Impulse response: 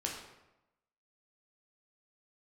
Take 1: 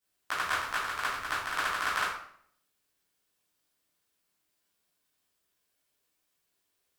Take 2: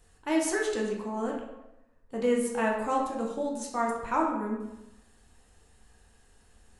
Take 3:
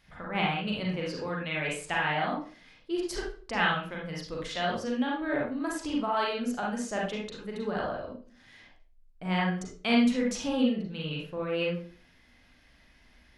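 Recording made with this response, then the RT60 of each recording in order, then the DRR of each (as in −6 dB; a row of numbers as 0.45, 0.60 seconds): 2; 0.65, 0.95, 0.40 seconds; −11.5, −1.5, −3.0 decibels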